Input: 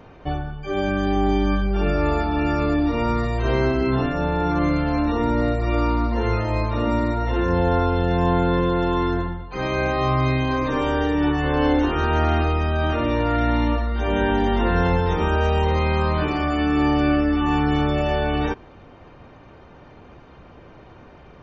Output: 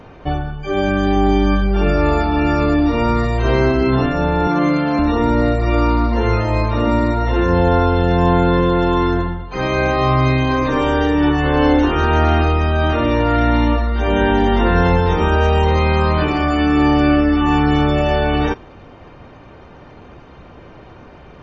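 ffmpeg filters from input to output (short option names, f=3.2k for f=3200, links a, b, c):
-filter_complex "[0:a]asettb=1/sr,asplit=3[a][b][c];[a]atrim=end=4.474[d];[b]atrim=start=4.47:end=4.99,asetpts=PTS-STARTPTS,afade=t=in:d=0.004:c=qsin,afade=t=out:st=0.516:d=0.004:c=qsin,highpass=f=140:w=0.5412,highpass=f=140:w=1.3066[e];[c]atrim=start=4.986[f];[d][e]acrossfade=d=0.004:c1=hsin:c2=qsin[g];[g][f]acrossfade=d=0.004:c1=qsin:c2=hsin,volume=5.5dB" -ar 24000 -c:a aac -b:a 48k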